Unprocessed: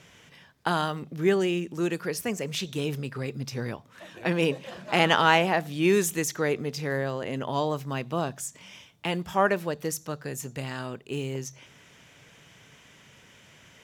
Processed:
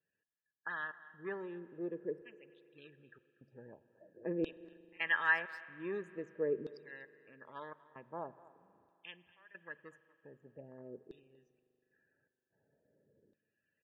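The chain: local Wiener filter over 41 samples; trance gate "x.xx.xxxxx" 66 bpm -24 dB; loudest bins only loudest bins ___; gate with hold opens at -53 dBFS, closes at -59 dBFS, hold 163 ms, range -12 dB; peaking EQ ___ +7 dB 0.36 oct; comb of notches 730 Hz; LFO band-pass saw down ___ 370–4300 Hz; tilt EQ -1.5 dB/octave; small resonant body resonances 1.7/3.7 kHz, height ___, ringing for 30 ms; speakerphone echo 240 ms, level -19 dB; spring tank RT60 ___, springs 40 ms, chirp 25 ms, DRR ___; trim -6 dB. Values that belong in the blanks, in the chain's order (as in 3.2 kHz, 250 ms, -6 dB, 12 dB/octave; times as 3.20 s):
64, 84 Hz, 0.45 Hz, 15 dB, 3.1 s, 17 dB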